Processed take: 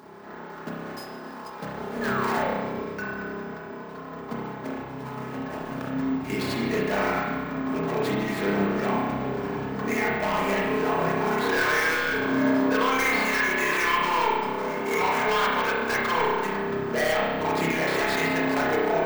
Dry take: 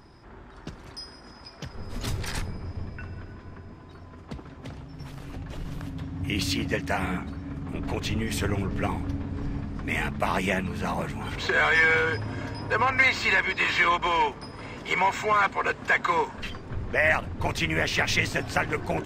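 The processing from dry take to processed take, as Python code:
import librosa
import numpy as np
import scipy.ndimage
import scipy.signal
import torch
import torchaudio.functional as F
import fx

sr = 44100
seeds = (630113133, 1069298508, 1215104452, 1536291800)

p1 = scipy.signal.medfilt(x, 15)
p2 = scipy.signal.sosfilt(scipy.signal.butter(2, 260.0, 'highpass', fs=sr, output='sos'), p1)
p3 = p2 + 0.42 * np.pad(p2, (int(4.7 * sr / 1000.0), 0))[:len(p2)]
p4 = fx.over_compress(p3, sr, threshold_db=-36.0, ratio=-1.0)
p5 = p3 + (p4 * 10.0 ** (-1.5 / 20.0))
p6 = 10.0 ** (-16.0 / 20.0) * np.tanh(p5 / 10.0 ** (-16.0 / 20.0))
p7 = fx.spec_paint(p6, sr, seeds[0], shape='fall', start_s=2.01, length_s=0.51, low_hz=450.0, high_hz=1800.0, level_db=-33.0)
p8 = 10.0 ** (-22.0 / 20.0) * (np.abs((p7 / 10.0 ** (-22.0 / 20.0) + 3.0) % 4.0 - 2.0) - 1.0)
p9 = fx.rev_spring(p8, sr, rt60_s=1.4, pass_ms=(30,), chirp_ms=45, drr_db=-4.5)
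p10 = np.repeat(p9[::2], 2)[:len(p9)]
p11 = fx.end_taper(p10, sr, db_per_s=110.0)
y = p11 * 10.0 ** (-1.5 / 20.0)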